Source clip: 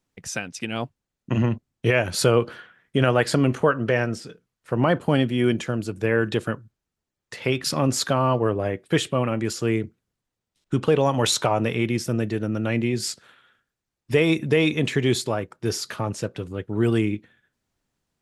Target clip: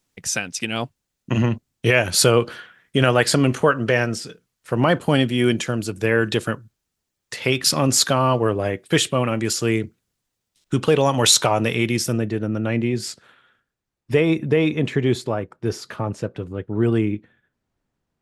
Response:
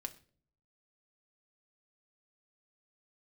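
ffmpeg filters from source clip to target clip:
-af "asetnsamples=nb_out_samples=441:pad=0,asendcmd='12.18 highshelf g -5;14.21 highshelf g -10.5',highshelf=frequency=2700:gain=8,volume=2dB"

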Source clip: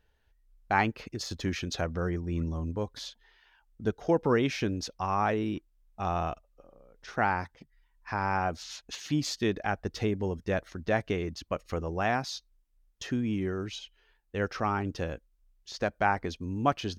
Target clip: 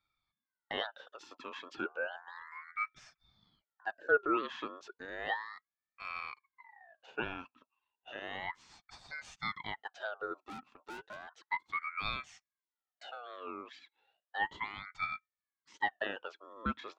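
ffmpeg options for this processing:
ffmpeg -i in.wav -filter_complex "[0:a]asplit=3[link_01][link_02][link_03];[link_01]bandpass=frequency=530:width_type=q:width=8,volume=0dB[link_04];[link_02]bandpass=frequency=1840:width_type=q:width=8,volume=-6dB[link_05];[link_03]bandpass=frequency=2480:width_type=q:width=8,volume=-9dB[link_06];[link_04][link_05][link_06]amix=inputs=3:normalize=0,asettb=1/sr,asplit=3[link_07][link_08][link_09];[link_07]atrim=end=10.464[link_10];[link_08]atrim=start=10.46:end=11.28,asetpts=PTS-STARTPTS,afade=type=in:duration=0.004:curve=qsin,afade=type=out:start_time=0.816:duration=0.004:curve=qsin,aeval=exprs='(tanh(224*val(0)+0.7)-tanh(0.7))/224':channel_layout=same[link_11];[link_09]atrim=start=11.276[link_12];[link_10][link_11]acrossfade=duration=0.004:curve1=hsin:curve2=qsin[link_13];[link_13][link_12]acrossfade=duration=0.004:curve1=qsin:curve2=hsin,aeval=exprs='val(0)*sin(2*PI*1300*n/s+1300*0.4/0.33*sin(2*PI*0.33*n/s))':channel_layout=same,volume=5.5dB" out.wav

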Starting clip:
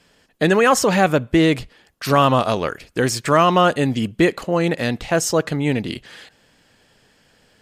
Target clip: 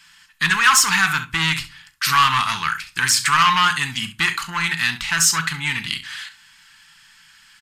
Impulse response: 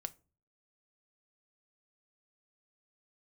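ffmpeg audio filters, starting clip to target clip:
-filter_complex "[1:a]atrim=start_sample=2205[link_01];[0:a][link_01]afir=irnorm=-1:irlink=0,aresample=32000,aresample=44100,aecho=1:1:37|67:0.188|0.178,asoftclip=type=tanh:threshold=-14.5dB,firequalizer=gain_entry='entry(130,0);entry(560,-30);entry(900,8);entry(1400,15)':delay=0.05:min_phase=1,volume=-3.5dB"

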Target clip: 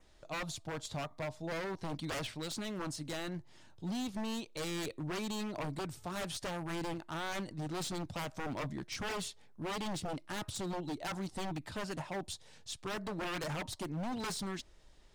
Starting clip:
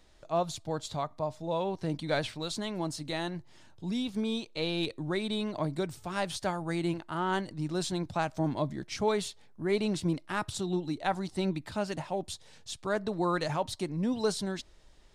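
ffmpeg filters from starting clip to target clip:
ffmpeg -i in.wav -af "aeval=exprs='0.0316*(abs(mod(val(0)/0.0316+3,4)-2)-1)':channel_layout=same,adynamicequalizer=threshold=0.00158:dfrequency=4100:dqfactor=3.2:tfrequency=4100:tqfactor=3.2:attack=5:release=100:ratio=0.375:range=2:mode=cutabove:tftype=bell,volume=-2.5dB" out.wav

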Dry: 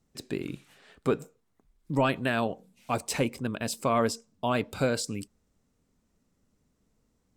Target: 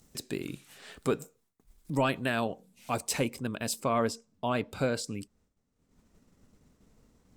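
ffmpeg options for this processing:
ffmpeg -i in.wav -af "agate=range=-33dB:threshold=-59dB:ratio=3:detection=peak,asetnsamples=nb_out_samples=441:pad=0,asendcmd='2.04 highshelf g 5.5;3.8 highshelf g -3',highshelf=frequency=4900:gain=10.5,acompressor=mode=upward:threshold=-36dB:ratio=2.5,volume=-2.5dB" out.wav

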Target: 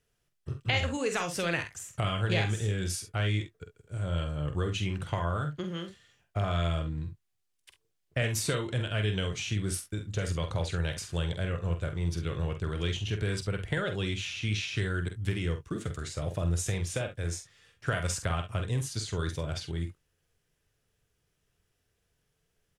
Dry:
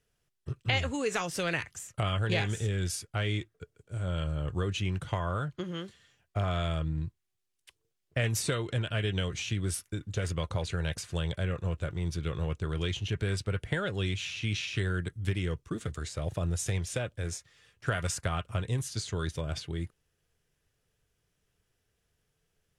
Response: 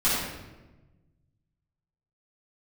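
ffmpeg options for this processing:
-af "aecho=1:1:47|68:0.398|0.158"

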